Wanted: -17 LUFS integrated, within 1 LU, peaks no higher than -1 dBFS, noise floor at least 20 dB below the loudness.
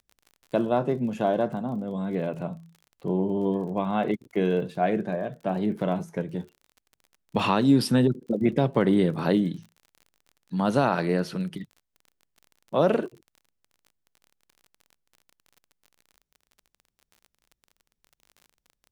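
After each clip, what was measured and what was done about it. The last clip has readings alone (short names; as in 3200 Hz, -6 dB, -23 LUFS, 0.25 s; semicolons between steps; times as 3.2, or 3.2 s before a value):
ticks 34/s; loudness -26.0 LUFS; peak -9.0 dBFS; loudness target -17.0 LUFS
-> de-click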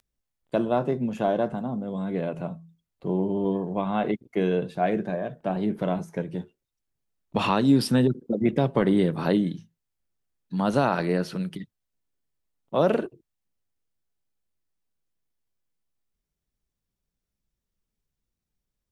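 ticks 0.053/s; loudness -26.0 LUFS; peak -9.0 dBFS; loudness target -17.0 LUFS
-> gain +9 dB; limiter -1 dBFS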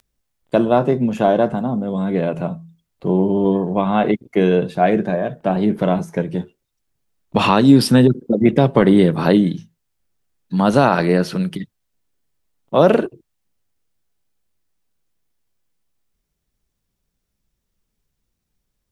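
loudness -17.0 LUFS; peak -1.0 dBFS; noise floor -76 dBFS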